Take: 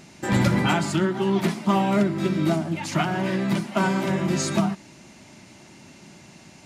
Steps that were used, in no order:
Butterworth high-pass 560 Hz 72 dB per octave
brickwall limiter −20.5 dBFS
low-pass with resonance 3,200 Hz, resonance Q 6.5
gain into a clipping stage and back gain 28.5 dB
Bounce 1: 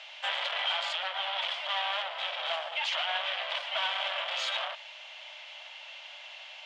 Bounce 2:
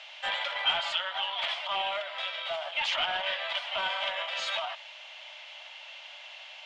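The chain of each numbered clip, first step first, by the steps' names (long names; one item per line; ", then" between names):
gain into a clipping stage and back, then low-pass with resonance, then brickwall limiter, then Butterworth high-pass
brickwall limiter, then Butterworth high-pass, then gain into a clipping stage and back, then low-pass with resonance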